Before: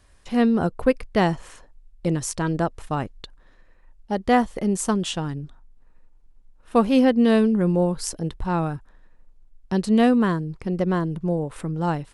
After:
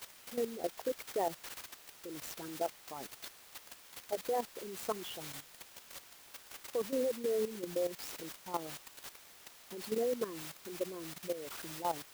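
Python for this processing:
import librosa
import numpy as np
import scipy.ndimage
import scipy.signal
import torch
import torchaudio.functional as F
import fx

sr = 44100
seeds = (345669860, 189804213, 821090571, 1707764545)

y = fx.envelope_sharpen(x, sr, power=3.0)
y = fx.quant_dither(y, sr, seeds[0], bits=6, dither='triangular')
y = scipy.signal.sosfilt(scipy.signal.butter(2, 430.0, 'highpass', fs=sr, output='sos'), y)
y = fx.level_steps(y, sr, step_db=12)
y = fx.clock_jitter(y, sr, seeds[1], jitter_ms=0.031)
y = y * 10.0 ** (-7.5 / 20.0)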